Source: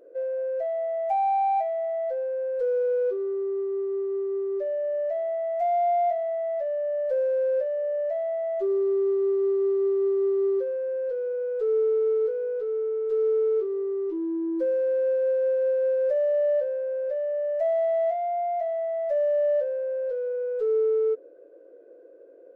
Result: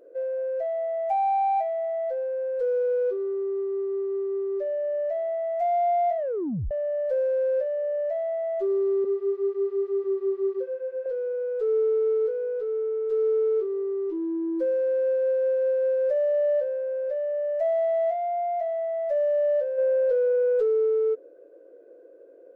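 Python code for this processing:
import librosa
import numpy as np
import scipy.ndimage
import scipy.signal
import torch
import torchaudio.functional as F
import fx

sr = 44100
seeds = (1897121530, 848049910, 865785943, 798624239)

y = fx.flanger_cancel(x, sr, hz=1.0, depth_ms=7.6, at=(9.04, 11.06))
y = fx.env_flatten(y, sr, amount_pct=100, at=(19.77, 20.85), fade=0.02)
y = fx.edit(y, sr, fx.tape_stop(start_s=6.17, length_s=0.54), tone=tone)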